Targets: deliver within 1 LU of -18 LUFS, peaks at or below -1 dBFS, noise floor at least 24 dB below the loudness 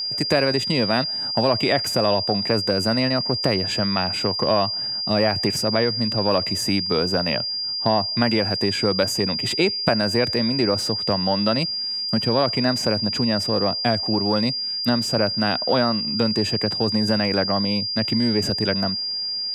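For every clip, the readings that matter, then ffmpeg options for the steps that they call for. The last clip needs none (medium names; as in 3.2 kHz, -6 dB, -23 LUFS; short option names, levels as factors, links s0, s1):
steady tone 4.8 kHz; tone level -24 dBFS; loudness -20.5 LUFS; peak level -2.0 dBFS; loudness target -18.0 LUFS
-> -af "bandreject=f=4800:w=30"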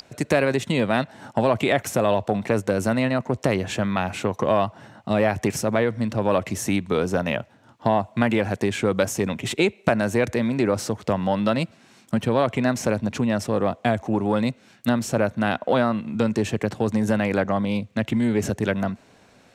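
steady tone not found; loudness -23.5 LUFS; peak level -2.0 dBFS; loudness target -18.0 LUFS
-> -af "volume=1.88,alimiter=limit=0.891:level=0:latency=1"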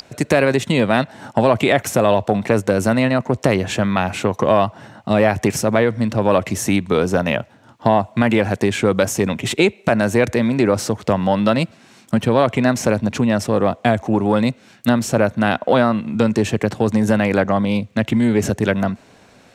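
loudness -18.0 LUFS; peak level -1.0 dBFS; noise floor -49 dBFS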